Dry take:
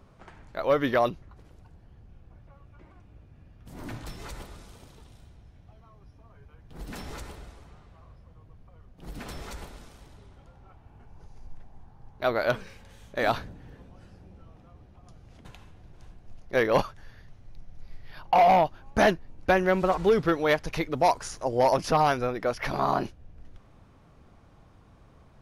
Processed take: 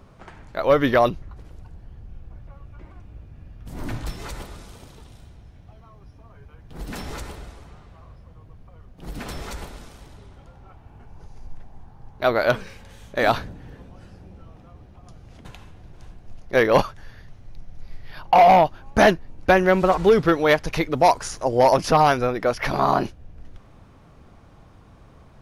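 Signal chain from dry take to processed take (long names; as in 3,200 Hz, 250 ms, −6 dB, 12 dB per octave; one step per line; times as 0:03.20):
0:00.65–0:04.10: low-shelf EQ 67 Hz +9 dB
level +6 dB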